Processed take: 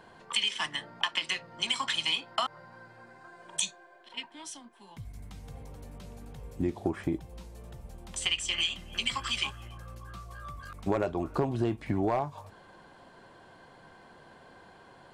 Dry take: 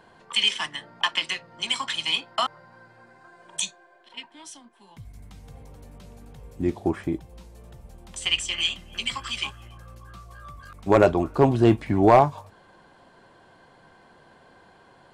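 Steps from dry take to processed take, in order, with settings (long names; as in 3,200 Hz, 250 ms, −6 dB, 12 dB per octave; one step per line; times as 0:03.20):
downward compressor 10 to 1, threshold −25 dBFS, peak gain reduction 15 dB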